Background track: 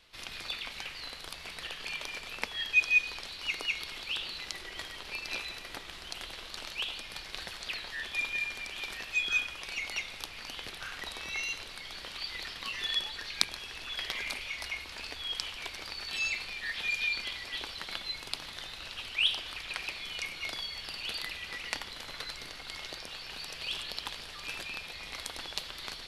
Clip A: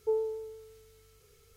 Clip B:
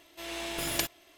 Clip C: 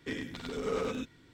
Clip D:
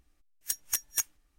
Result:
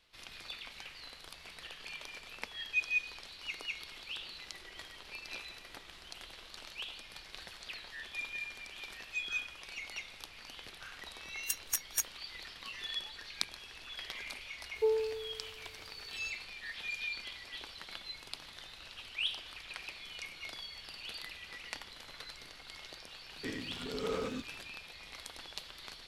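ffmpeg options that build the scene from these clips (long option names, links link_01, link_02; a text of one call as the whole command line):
ffmpeg -i bed.wav -i cue0.wav -i cue1.wav -i cue2.wav -i cue3.wav -filter_complex "[0:a]volume=-7.5dB[link_01];[4:a]atrim=end=1.38,asetpts=PTS-STARTPTS,volume=-3.5dB,afade=type=in:duration=0.004:curve=hsin,afade=type=out:start_time=1.376:duration=0.004:curve=hsin,adelay=11000[link_02];[1:a]atrim=end=1.56,asetpts=PTS-STARTPTS,afade=type=in:duration=0.004:curve=hsin,afade=type=out:start_time=1.556:duration=0.004:curve=hsin,adelay=14750[link_03];[3:a]atrim=end=1.33,asetpts=PTS-STARTPTS,volume=-3.5dB,afade=type=in:duration=0.004:curve=hsin,afade=type=out:start_time=1.326:duration=0.004:curve=hsin,adelay=23370[link_04];[link_01][link_02][link_03][link_04]amix=inputs=4:normalize=0" out.wav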